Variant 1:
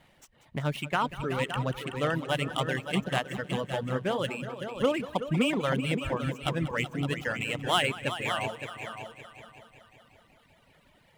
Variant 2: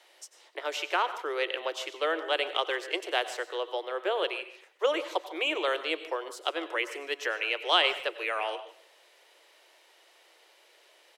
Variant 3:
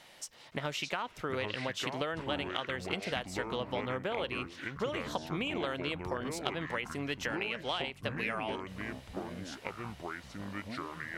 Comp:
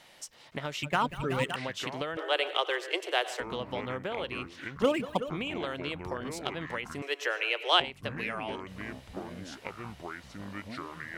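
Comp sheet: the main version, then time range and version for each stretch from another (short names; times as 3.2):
3
0.83–1.56 from 1
2.17–3.4 from 2
4.82–5.3 from 1
7.02–7.8 from 2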